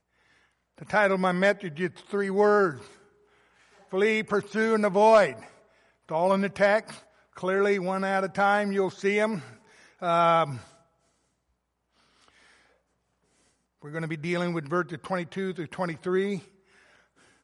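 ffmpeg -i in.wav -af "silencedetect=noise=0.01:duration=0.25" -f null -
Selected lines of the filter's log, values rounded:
silence_start: 0.00
silence_end: 0.78 | silence_duration: 0.78
silence_start: 2.86
silence_end: 3.92 | silence_duration: 1.06
silence_start: 5.47
silence_end: 6.09 | silence_duration: 0.62
silence_start: 6.99
silence_end: 7.37 | silence_duration: 0.38
silence_start: 9.53
silence_end: 10.02 | silence_duration: 0.49
silence_start: 10.64
silence_end: 13.84 | silence_duration: 3.20
silence_start: 16.42
silence_end: 17.43 | silence_duration: 1.01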